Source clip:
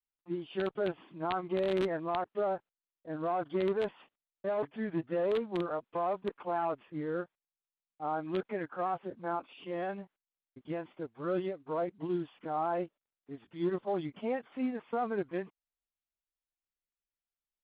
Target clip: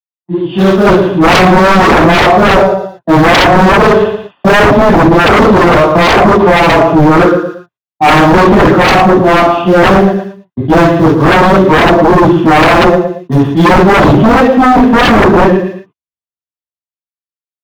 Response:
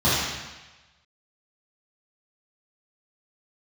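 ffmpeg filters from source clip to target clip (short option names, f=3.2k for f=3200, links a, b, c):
-filter_complex "[0:a]agate=range=-47dB:threshold=-51dB:ratio=16:detection=peak,dynaudnorm=f=140:g=13:m=15.5dB,asplit=2[a][b];[b]aeval=exprs='val(0)*gte(abs(val(0)),0.0891)':c=same,volume=-6.5dB[c];[a][c]amix=inputs=2:normalize=0,aecho=1:1:114|228|342:0.251|0.0728|0.0211,asoftclip=type=tanh:threshold=-11dB[d];[1:a]atrim=start_sample=2205,atrim=end_sample=3969[e];[d][e]afir=irnorm=-1:irlink=0,acontrast=62,adynamicequalizer=threshold=0.141:dfrequency=1700:dqfactor=0.7:tfrequency=1700:tqfactor=0.7:attack=5:release=100:ratio=0.375:range=3:mode=cutabove:tftype=highshelf,volume=-1.5dB"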